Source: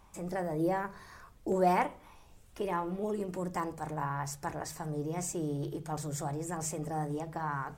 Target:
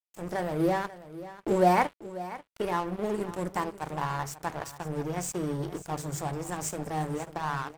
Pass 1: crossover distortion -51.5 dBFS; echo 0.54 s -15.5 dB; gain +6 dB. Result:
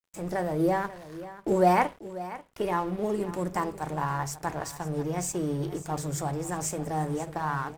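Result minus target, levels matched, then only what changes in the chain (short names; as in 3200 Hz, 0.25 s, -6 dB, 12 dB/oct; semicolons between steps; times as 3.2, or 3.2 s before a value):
crossover distortion: distortion -8 dB
change: crossover distortion -42.5 dBFS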